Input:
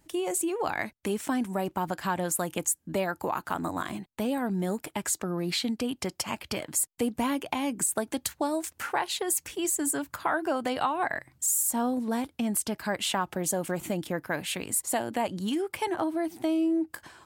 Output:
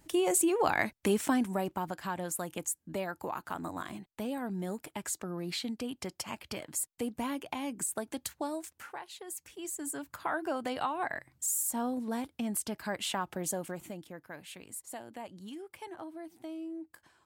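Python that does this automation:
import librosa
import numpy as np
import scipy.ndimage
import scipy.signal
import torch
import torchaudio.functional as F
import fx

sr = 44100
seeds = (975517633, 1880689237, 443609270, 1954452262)

y = fx.gain(x, sr, db=fx.line((1.19, 2.0), (1.98, -7.0), (8.5, -7.0), (9.07, -16.5), (10.35, -5.5), (13.52, -5.5), (14.09, -15.0)))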